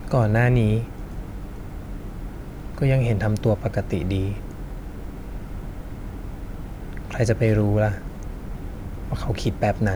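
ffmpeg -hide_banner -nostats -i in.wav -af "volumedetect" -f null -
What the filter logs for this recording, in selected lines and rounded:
mean_volume: -24.0 dB
max_volume: -8.2 dB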